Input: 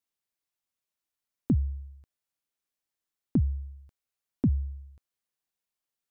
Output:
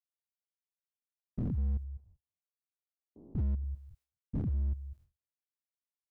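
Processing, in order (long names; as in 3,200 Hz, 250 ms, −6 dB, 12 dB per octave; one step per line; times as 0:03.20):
spectrum averaged block by block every 200 ms
noise gate with hold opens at −56 dBFS
0:01.84–0:03.64: Butterworth low-pass 990 Hz
hard clipping −30.5 dBFS, distortion −13 dB
far-end echo of a speakerphone 230 ms, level −24 dB
level +2.5 dB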